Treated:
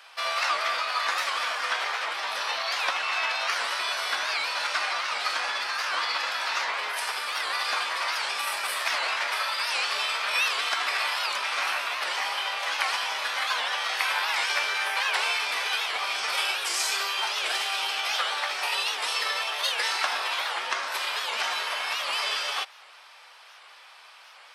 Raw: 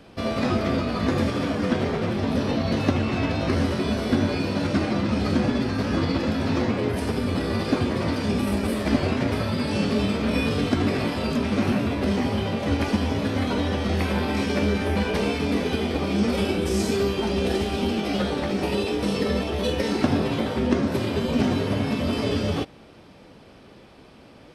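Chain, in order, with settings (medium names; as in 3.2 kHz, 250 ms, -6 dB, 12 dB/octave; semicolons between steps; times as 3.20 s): high-pass 960 Hz 24 dB/octave; warped record 78 rpm, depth 160 cents; trim +6.5 dB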